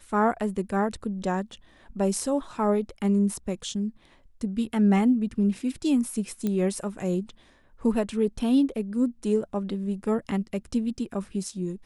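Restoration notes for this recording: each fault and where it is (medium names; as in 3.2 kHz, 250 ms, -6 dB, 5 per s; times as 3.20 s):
6.47 s: pop -16 dBFS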